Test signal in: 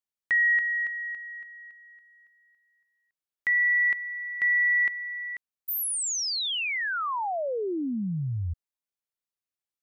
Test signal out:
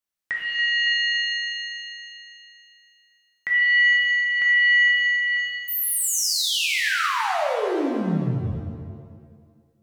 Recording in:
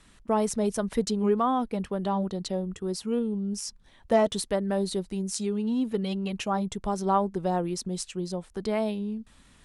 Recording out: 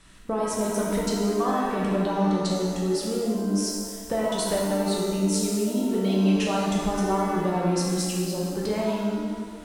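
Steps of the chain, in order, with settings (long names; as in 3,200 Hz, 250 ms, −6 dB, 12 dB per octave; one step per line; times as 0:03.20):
downward compressor, threshold −27 dBFS
reverb with rising layers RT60 1.6 s, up +7 semitones, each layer −8 dB, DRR −3.5 dB
level +1.5 dB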